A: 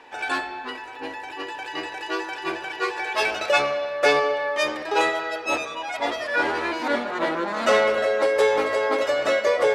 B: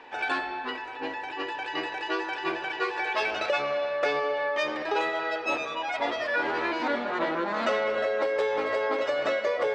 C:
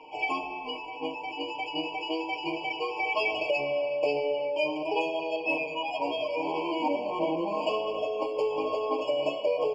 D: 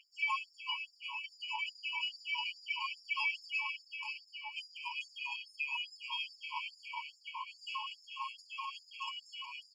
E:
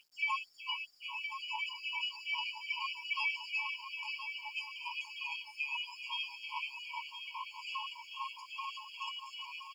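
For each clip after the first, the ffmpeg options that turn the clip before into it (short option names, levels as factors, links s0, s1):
-af "lowpass=4500,equalizer=f=70:w=2.3:g=-6.5,acompressor=threshold=0.0631:ratio=5"
-af "aecho=1:1:6.5:0.95,afftfilt=real='re*eq(mod(floor(b*sr/1024/1100),2),0)':imag='im*eq(mod(floor(b*sr/1024/1100),2),0)':win_size=1024:overlap=0.75,volume=0.75"
-af "aecho=1:1:245|490|735|980|1225|1470:0.282|0.158|0.0884|0.0495|0.0277|0.0155,alimiter=limit=0.0708:level=0:latency=1:release=31,afftfilt=real='re*gte(b*sr/1024,830*pow(4800/830,0.5+0.5*sin(2*PI*2.4*pts/sr)))':imag='im*gte(b*sr/1024,830*pow(4800/830,0.5+0.5*sin(2*PI*2.4*pts/sr)))':win_size=1024:overlap=0.75"
-af "acrusher=bits=11:mix=0:aa=0.000001,aecho=1:1:1020|2040|3060|4080:0.376|0.135|0.0487|0.0175"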